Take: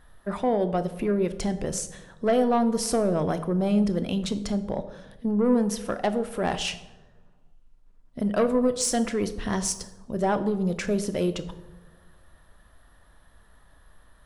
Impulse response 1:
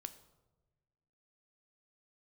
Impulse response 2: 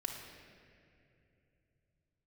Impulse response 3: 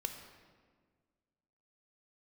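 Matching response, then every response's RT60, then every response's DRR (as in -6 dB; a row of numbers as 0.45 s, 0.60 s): 1; 1.2 s, 2.7 s, 1.6 s; 9.5 dB, -1.0 dB, 4.5 dB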